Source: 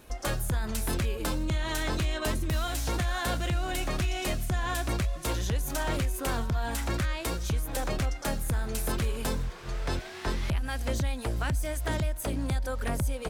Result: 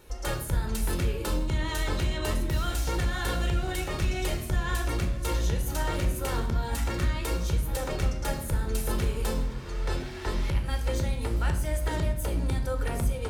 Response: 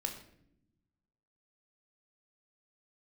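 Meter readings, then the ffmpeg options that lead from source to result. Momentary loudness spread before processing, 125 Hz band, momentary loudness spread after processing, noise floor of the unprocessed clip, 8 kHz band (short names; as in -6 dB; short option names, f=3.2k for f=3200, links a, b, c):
3 LU, +2.0 dB, 3 LU, -41 dBFS, -1.0 dB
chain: -filter_complex "[1:a]atrim=start_sample=2205[a];[0:a][a]afir=irnorm=-1:irlink=0,volume=-1dB"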